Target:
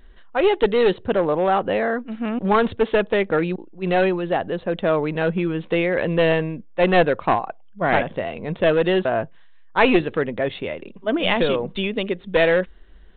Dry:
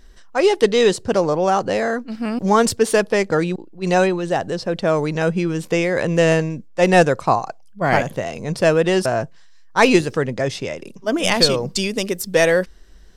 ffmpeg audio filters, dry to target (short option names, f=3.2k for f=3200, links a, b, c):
-af "aresample=8000,aeval=exprs='clip(val(0),-1,0.2)':c=same,aresample=44100,equalizer=f=130:w=4:g=-9.5,volume=-1dB"